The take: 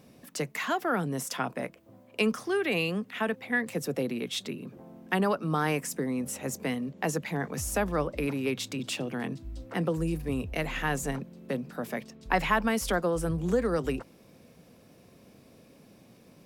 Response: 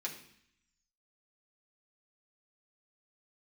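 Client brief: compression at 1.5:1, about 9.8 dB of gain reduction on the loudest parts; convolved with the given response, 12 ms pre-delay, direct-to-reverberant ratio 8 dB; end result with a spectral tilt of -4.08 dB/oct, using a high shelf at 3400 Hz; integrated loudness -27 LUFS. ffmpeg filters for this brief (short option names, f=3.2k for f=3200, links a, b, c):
-filter_complex "[0:a]highshelf=f=3.4k:g=4.5,acompressor=threshold=-49dB:ratio=1.5,asplit=2[a][b];[1:a]atrim=start_sample=2205,adelay=12[c];[b][c]afir=irnorm=-1:irlink=0,volume=-8.5dB[d];[a][d]amix=inputs=2:normalize=0,volume=11dB"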